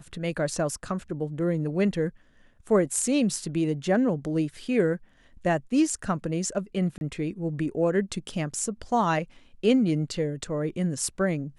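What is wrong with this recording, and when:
6.98–7.01 gap 31 ms

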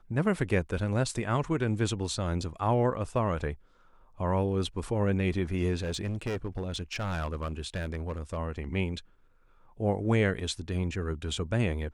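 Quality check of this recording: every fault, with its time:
5.8–8.38 clipped -28 dBFS

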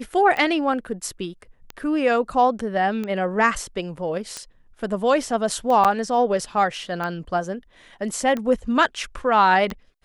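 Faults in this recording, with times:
tick 45 rpm -16 dBFS
5.84–5.85 gap 7.3 ms

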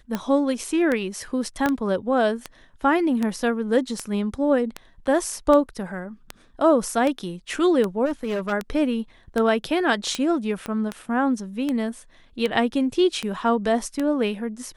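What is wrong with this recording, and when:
tick 78 rpm -12 dBFS
1.66 pop -9 dBFS
8.05–8.53 clipped -22 dBFS
10.66 pop -16 dBFS

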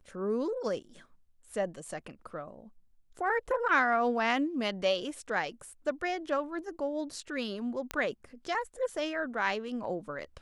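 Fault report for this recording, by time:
7.91 pop -17 dBFS

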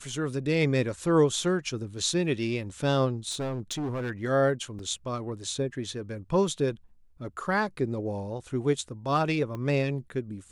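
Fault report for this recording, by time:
3.3–4.11 clipped -28 dBFS
4.79 gap 2.6 ms
9.55 pop -24 dBFS

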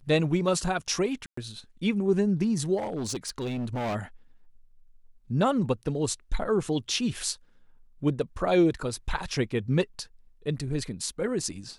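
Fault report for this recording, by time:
1.26–1.37 gap 0.114 s
2.77–3.96 clipped -27.5 dBFS

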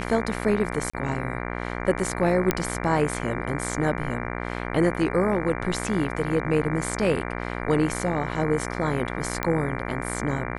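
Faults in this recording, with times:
buzz 60 Hz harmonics 39 -31 dBFS
0.9–0.94 gap 35 ms
2.51 pop -5 dBFS
9.43 pop -10 dBFS

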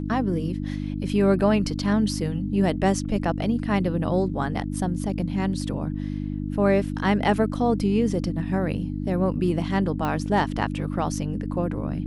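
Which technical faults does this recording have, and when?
hum 50 Hz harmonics 6 -29 dBFS
10.05 pop -15 dBFS

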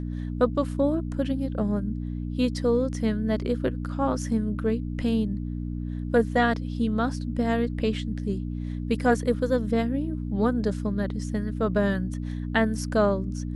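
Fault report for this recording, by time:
hum 60 Hz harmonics 5 -31 dBFS

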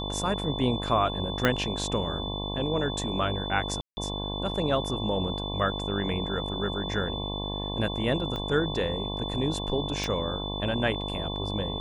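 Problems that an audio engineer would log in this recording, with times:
buzz 50 Hz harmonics 22 -34 dBFS
tone 3500 Hz -35 dBFS
1.45 pop -8 dBFS
3.81–3.97 gap 0.16 s
8.36 pop -21 dBFS
10.04 pop

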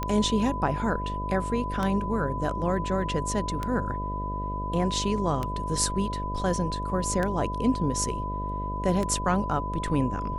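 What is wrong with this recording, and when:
buzz 50 Hz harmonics 13 -33 dBFS
tick 33 1/3 rpm -15 dBFS
tone 1000 Hz -32 dBFS

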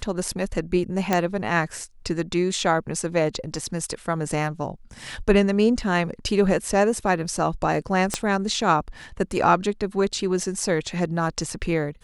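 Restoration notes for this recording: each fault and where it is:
1.13 pop -6 dBFS
8.14 pop -8 dBFS

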